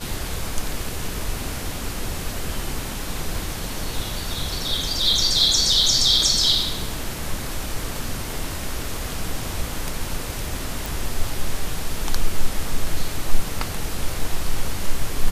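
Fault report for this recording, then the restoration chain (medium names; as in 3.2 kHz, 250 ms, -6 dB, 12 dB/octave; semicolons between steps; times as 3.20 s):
10.86 s: pop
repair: de-click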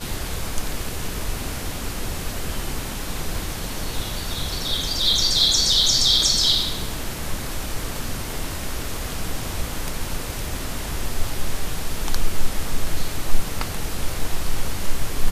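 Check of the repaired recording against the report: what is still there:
nothing left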